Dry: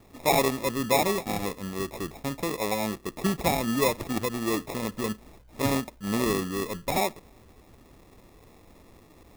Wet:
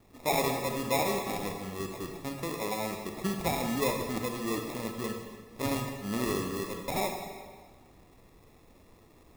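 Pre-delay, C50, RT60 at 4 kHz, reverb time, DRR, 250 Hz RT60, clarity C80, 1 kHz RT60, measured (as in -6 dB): 26 ms, 4.0 dB, 1.4 s, 1.6 s, 3.0 dB, 1.6 s, 6.0 dB, 1.6 s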